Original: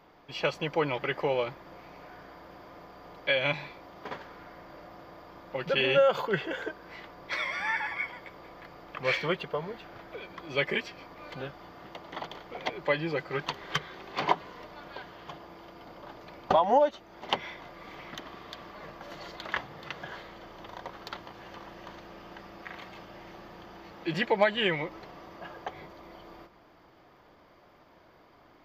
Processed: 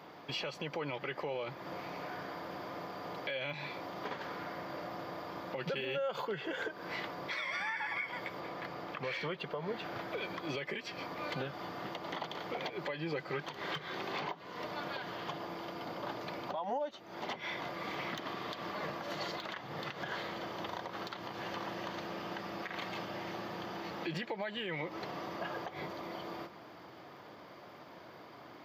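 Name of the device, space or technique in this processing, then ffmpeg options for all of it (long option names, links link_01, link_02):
broadcast voice chain: -filter_complex "[0:a]asettb=1/sr,asplit=3[link_01][link_02][link_03];[link_01]atrim=end=8.404[link_04];[link_02]atrim=start=8.4:end=9.85,asetpts=PTS-STARTPTS,afade=type=in:duration=0.004:curve=qsin,afade=type=out:start_time=1.446:duration=0.004:curve=qsin,highshelf=frequency=5600:gain=-4.5[link_05];[link_03]atrim=start=9.846[link_06];[link_04][link_05]acrossfade=duration=0.004:curve1=hsin:curve2=qsin[link_07];[link_07][link_06]acrossfade=duration=0.004:curve1=qsin:curve2=hsin,highpass=frequency=100:width=0.5412,highpass=frequency=100:width=1.3066,deesser=0.95,acompressor=threshold=-38dB:ratio=4,equalizer=frequency=4100:width_type=o:width=0.82:gain=2,alimiter=level_in=10dB:limit=-24dB:level=0:latency=1:release=122,volume=-10dB,volume=6dB"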